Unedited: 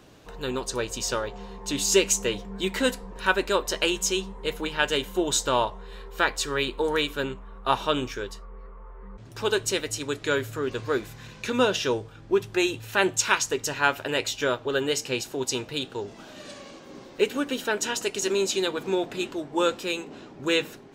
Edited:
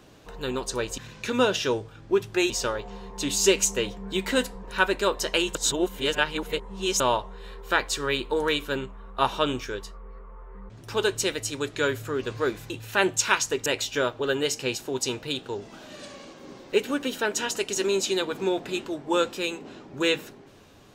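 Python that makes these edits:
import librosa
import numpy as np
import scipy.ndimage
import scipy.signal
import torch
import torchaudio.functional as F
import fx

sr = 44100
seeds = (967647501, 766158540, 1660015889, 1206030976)

y = fx.edit(x, sr, fx.reverse_span(start_s=4.03, length_s=1.45),
    fx.move(start_s=11.18, length_s=1.52, to_s=0.98),
    fx.cut(start_s=13.66, length_s=0.46), tone=tone)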